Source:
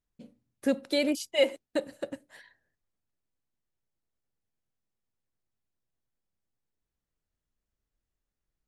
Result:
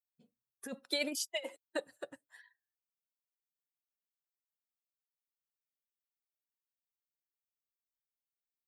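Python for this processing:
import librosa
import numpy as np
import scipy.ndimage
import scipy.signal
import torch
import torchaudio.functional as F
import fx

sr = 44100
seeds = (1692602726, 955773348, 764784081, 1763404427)

y = fx.bin_expand(x, sr, power=1.5)
y = fx.over_compress(y, sr, threshold_db=-29.0, ratio=-0.5)
y = fx.highpass(y, sr, hz=890.0, slope=6)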